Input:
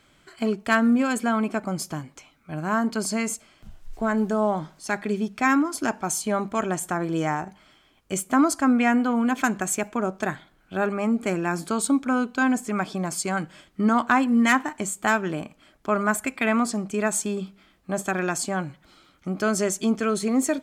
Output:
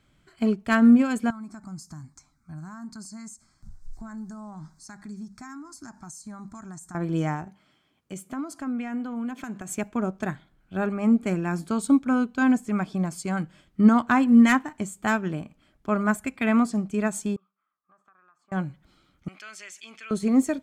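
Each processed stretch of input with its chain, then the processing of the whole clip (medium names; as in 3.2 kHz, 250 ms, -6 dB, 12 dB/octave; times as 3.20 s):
1.30–6.95 s: high-order bell 6 kHz +10 dB 1.3 oct + static phaser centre 1.2 kHz, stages 4 + compression 3:1, threshold -34 dBFS
7.46–9.69 s: high-pass 140 Hz + compression 3:1, threshold -28 dBFS
17.36–18.52 s: band-pass filter 1.2 kHz, Q 10 + compression 3:1, threshold -50 dBFS
19.28–20.11 s: band-pass filter 2.4 kHz, Q 2.4 + tilt EQ +3 dB/octave + level flattener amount 50%
whole clip: tone controls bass +10 dB, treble -1 dB; upward expansion 1.5:1, over -29 dBFS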